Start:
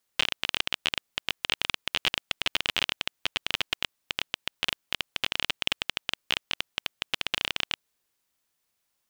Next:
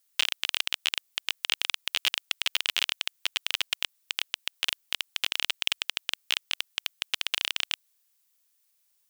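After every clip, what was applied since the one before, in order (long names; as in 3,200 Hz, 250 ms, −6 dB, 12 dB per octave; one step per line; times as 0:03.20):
spectral tilt +3.5 dB per octave
level −5 dB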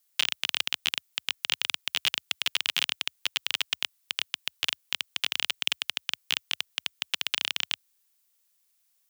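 high-pass filter 45 Hz 24 dB per octave
frequency shifter +26 Hz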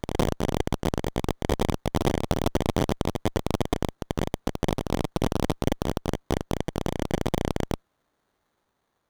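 backwards echo 454 ms −4 dB
windowed peak hold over 17 samples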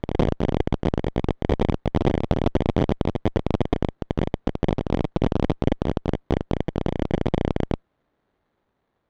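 low-pass filter 2,500 Hz 12 dB per octave
parametric band 1,200 Hz −5.5 dB 1.6 octaves
level +4.5 dB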